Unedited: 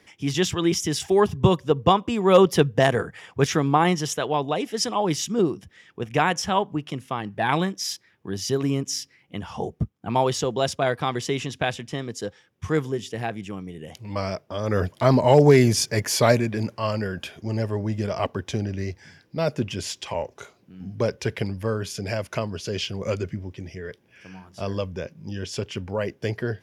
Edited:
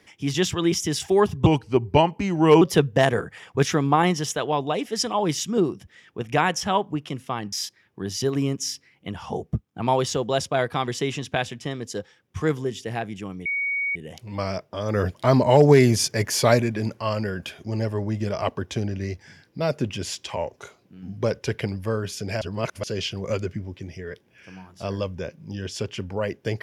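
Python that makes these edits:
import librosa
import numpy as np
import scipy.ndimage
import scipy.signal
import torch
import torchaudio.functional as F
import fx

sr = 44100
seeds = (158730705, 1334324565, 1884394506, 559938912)

y = fx.edit(x, sr, fx.speed_span(start_s=1.46, length_s=0.97, speed=0.84),
    fx.cut(start_s=7.34, length_s=0.46),
    fx.insert_tone(at_s=13.73, length_s=0.5, hz=2240.0, db=-22.5),
    fx.reverse_span(start_s=22.19, length_s=0.42), tone=tone)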